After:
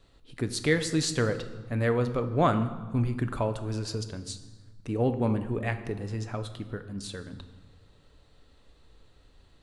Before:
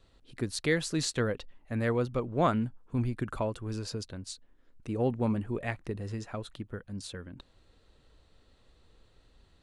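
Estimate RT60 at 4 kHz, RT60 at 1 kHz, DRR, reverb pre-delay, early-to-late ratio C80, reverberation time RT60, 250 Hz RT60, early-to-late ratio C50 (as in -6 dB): 1.0 s, 1.4 s, 8.5 dB, 7 ms, 13.5 dB, 1.3 s, 1.6 s, 12.0 dB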